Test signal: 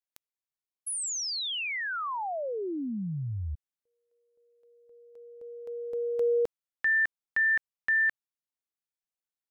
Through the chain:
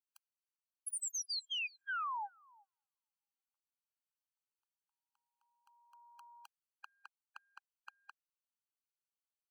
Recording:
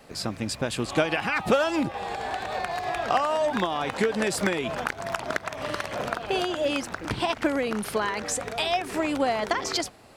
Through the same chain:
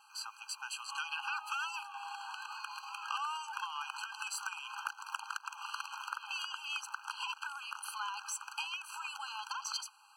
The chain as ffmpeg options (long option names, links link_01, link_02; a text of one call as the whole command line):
ffmpeg -i in.wav -filter_complex "[0:a]acrossover=split=480|1200[link_01][link_02][link_03];[link_01]acompressor=threshold=-37dB:ratio=4[link_04];[link_02]acompressor=threshold=-38dB:ratio=4[link_05];[link_03]acompressor=threshold=-28dB:ratio=4[link_06];[link_04][link_05][link_06]amix=inputs=3:normalize=0,aeval=exprs='0.335*(cos(1*acos(clip(val(0)/0.335,-1,1)))-cos(1*PI/2))+0.0133*(cos(8*acos(clip(val(0)/0.335,-1,1)))-cos(8*PI/2))':channel_layout=same,afftfilt=real='re*eq(mod(floor(b*sr/1024/810),2),1)':imag='im*eq(mod(floor(b*sr/1024/810),2),1)':win_size=1024:overlap=0.75,volume=-4.5dB" out.wav